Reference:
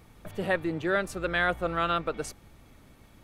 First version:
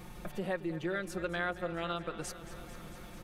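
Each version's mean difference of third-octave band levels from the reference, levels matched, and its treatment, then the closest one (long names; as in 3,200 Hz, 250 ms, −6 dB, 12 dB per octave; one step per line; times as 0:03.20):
7.5 dB: comb filter 5.6 ms, depth 83%
downward compressor 2.5 to 1, threshold −46 dBFS, peak gain reduction 19 dB
feedback echo with a swinging delay time 223 ms, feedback 77%, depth 69 cents, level −15 dB
level +5 dB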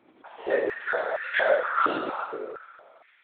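12.0 dB: dense smooth reverb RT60 1.7 s, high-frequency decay 0.55×, DRR −3 dB
linear-prediction vocoder at 8 kHz whisper
high-pass on a step sequencer 4.3 Hz 320–1,900 Hz
level −6.5 dB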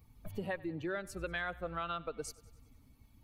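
3.5 dB: spectral dynamics exaggerated over time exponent 1.5
downward compressor 4 to 1, threshold −41 dBFS, peak gain reduction 15 dB
on a send: feedback echo with a high-pass in the loop 95 ms, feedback 59%, high-pass 180 Hz, level −21 dB
on the sum: level +3.5 dB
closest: third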